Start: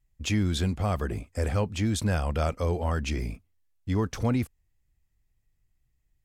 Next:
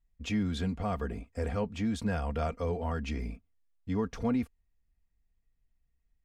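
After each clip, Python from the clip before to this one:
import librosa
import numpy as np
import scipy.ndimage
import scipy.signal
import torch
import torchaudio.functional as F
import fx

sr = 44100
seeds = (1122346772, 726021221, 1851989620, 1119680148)

y = fx.lowpass(x, sr, hz=2700.0, slope=6)
y = y + 0.57 * np.pad(y, (int(4.3 * sr / 1000.0), 0))[:len(y)]
y = F.gain(torch.from_numpy(y), -5.0).numpy()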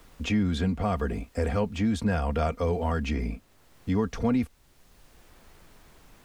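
y = fx.dmg_noise_colour(x, sr, seeds[0], colour='pink', level_db=-72.0)
y = fx.band_squash(y, sr, depth_pct=40)
y = F.gain(torch.from_numpy(y), 5.5).numpy()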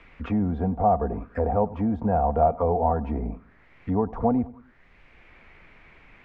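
y = fx.echo_feedback(x, sr, ms=96, feedback_pct=47, wet_db=-20.5)
y = fx.envelope_lowpass(y, sr, base_hz=780.0, top_hz=2400.0, q=4.9, full_db=-24.5, direction='down')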